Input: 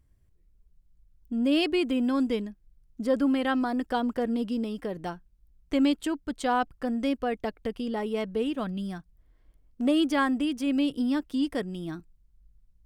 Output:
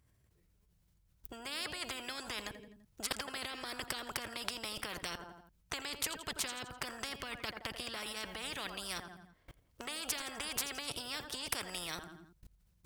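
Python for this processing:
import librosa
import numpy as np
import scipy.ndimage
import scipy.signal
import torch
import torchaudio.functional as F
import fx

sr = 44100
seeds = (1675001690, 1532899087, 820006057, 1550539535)

y = scipy.signal.sosfilt(scipy.signal.butter(2, 110.0, 'highpass', fs=sr, output='sos'), x)
y = fx.peak_eq(y, sr, hz=270.0, db=-7.0, octaves=1.6)
y = fx.level_steps(y, sr, step_db=24)
y = fx.echo_feedback(y, sr, ms=84, feedback_pct=48, wet_db=-20)
y = fx.spectral_comp(y, sr, ratio=10.0)
y = y * librosa.db_to_amplitude(7.5)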